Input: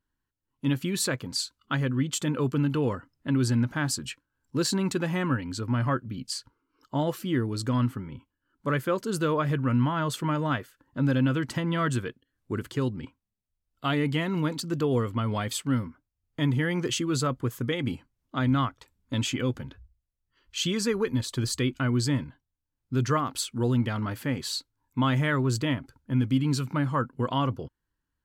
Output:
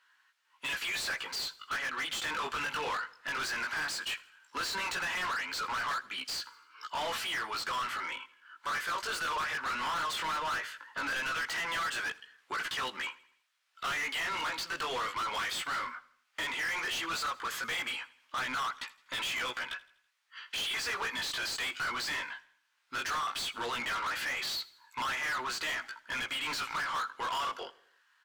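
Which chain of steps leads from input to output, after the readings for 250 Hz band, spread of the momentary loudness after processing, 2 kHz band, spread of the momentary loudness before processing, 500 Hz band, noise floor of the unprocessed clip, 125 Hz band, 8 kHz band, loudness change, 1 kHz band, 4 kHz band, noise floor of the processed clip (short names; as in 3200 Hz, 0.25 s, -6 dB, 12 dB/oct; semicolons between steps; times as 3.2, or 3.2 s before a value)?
-24.0 dB, 7 LU, +3.5 dB, 10 LU, -13.5 dB, -84 dBFS, -30.0 dB, -5.5 dB, -6.0 dB, -0.5 dB, +0.5 dB, -72 dBFS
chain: Chebyshev high-pass 1500 Hz, order 2; high shelf 7100 Hz -12 dB; compressor 2:1, threshold -46 dBFS, peak gain reduction 11 dB; chorus 0.16 Hz, delay 15.5 ms, depth 4.7 ms; overdrive pedal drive 35 dB, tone 4200 Hz, clips at -26 dBFS; on a send: feedback echo 82 ms, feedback 49%, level -21 dB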